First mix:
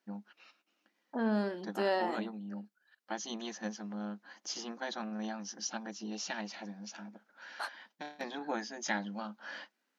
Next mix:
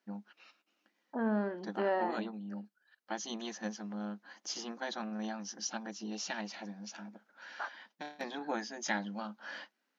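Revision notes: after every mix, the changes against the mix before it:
second voice: add Chebyshev low-pass 1600 Hz, order 2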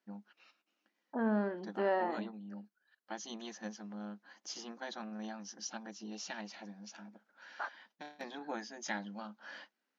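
first voice -4.5 dB

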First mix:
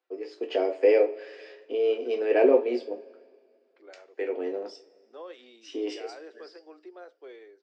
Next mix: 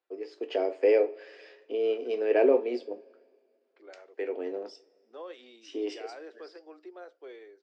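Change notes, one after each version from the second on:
first voice: send -7.0 dB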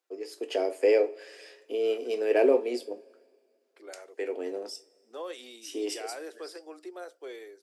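second voice +4.0 dB; master: remove Gaussian blur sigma 2 samples

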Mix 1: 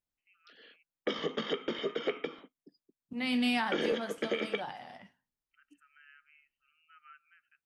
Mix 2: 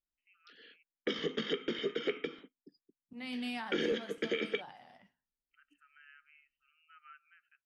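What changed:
second voice -9.5 dB; background: add band shelf 820 Hz -10 dB 1.3 oct

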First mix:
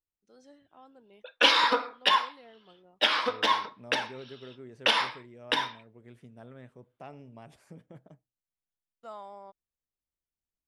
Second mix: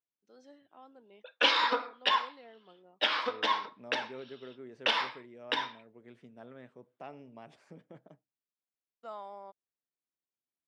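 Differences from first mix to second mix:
background -4.0 dB; master: add BPF 200–5400 Hz

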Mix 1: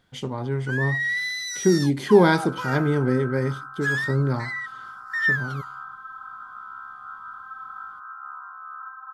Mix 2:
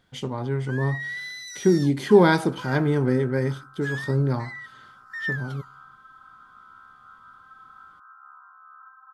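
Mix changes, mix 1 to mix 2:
first sound -7.5 dB; second sound -10.5 dB

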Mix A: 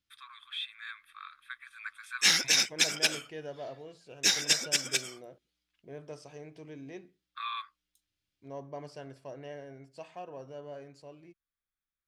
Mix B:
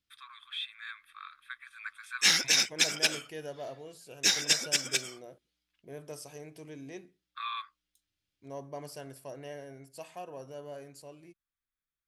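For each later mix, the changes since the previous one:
second voice: remove air absorption 120 m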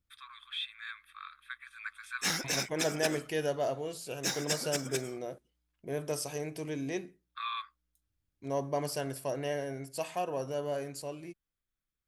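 second voice +9.0 dB; background: remove weighting filter D

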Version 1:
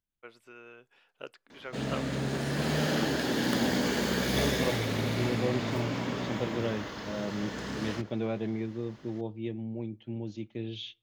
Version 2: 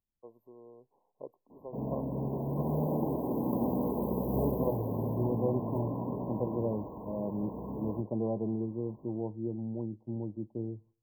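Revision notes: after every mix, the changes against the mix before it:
background: send off; master: add brick-wall FIR band-stop 1100–12000 Hz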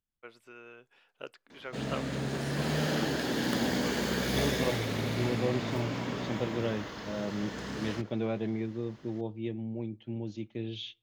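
master: remove brick-wall FIR band-stop 1100–12000 Hz

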